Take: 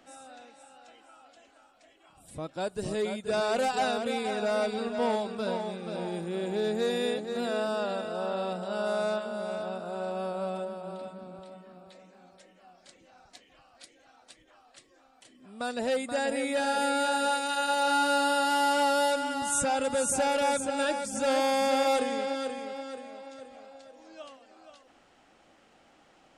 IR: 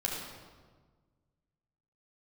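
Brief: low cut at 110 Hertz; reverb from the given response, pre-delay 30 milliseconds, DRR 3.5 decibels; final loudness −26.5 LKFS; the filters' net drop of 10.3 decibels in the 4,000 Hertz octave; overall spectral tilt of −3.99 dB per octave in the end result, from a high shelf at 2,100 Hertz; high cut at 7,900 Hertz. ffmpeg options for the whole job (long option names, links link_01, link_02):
-filter_complex "[0:a]highpass=110,lowpass=7900,highshelf=frequency=2100:gain=-6,equalizer=frequency=4000:width_type=o:gain=-7.5,asplit=2[link_01][link_02];[1:a]atrim=start_sample=2205,adelay=30[link_03];[link_02][link_03]afir=irnorm=-1:irlink=0,volume=-9dB[link_04];[link_01][link_04]amix=inputs=2:normalize=0,volume=2dB"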